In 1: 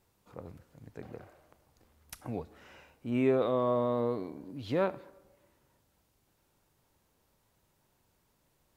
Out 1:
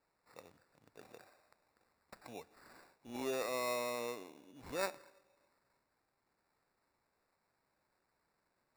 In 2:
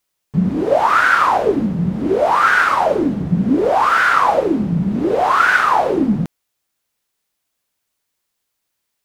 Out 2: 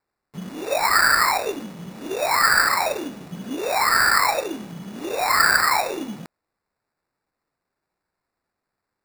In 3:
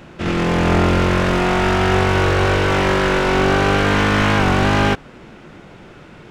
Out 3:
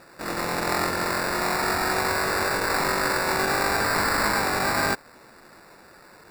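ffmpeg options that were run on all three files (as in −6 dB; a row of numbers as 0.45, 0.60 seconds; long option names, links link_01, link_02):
-af "highpass=frequency=1500:poles=1,highshelf=frequency=5500:gain=-10.5,acrusher=samples=14:mix=1:aa=0.000001"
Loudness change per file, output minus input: −9.0, −4.0, −7.5 LU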